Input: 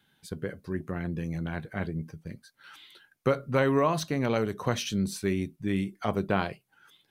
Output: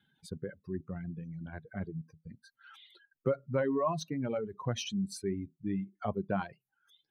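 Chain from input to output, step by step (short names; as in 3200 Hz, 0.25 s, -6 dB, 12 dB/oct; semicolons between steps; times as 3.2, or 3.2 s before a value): spectral contrast raised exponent 1.6; dynamic EQ 450 Hz, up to -3 dB, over -40 dBFS, Q 4.7; reverb removal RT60 1.9 s; gain -4 dB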